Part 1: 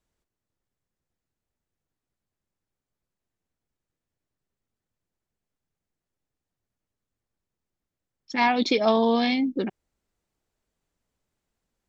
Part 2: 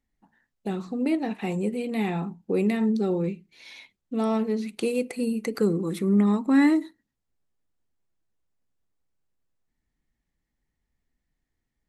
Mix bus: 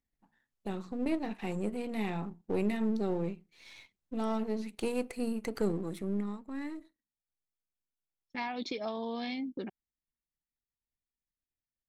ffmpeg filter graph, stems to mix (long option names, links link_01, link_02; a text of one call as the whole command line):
ffmpeg -i stem1.wav -i stem2.wav -filter_complex "[0:a]acompressor=threshold=-23dB:ratio=6,agate=range=-32dB:threshold=-31dB:ratio=16:detection=peak,volume=-10dB[link_01];[1:a]aeval=exprs='if(lt(val(0),0),0.447*val(0),val(0))':channel_layout=same,volume=-5dB,afade=type=out:start_time=5.65:duration=0.79:silence=0.223872[link_02];[link_01][link_02]amix=inputs=2:normalize=0" out.wav